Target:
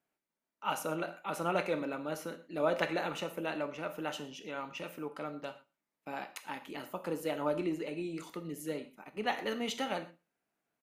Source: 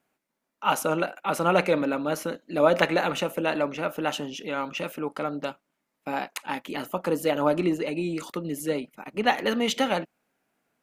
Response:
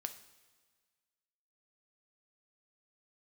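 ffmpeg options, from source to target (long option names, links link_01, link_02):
-filter_complex "[0:a]asplit=2[link_01][link_02];[link_02]adelay=116.6,volume=-25dB,highshelf=frequency=4000:gain=-2.62[link_03];[link_01][link_03]amix=inputs=2:normalize=0[link_04];[1:a]atrim=start_sample=2205,afade=type=out:start_time=0.18:duration=0.01,atrim=end_sample=8379[link_05];[link_04][link_05]afir=irnorm=-1:irlink=0,volume=-8dB"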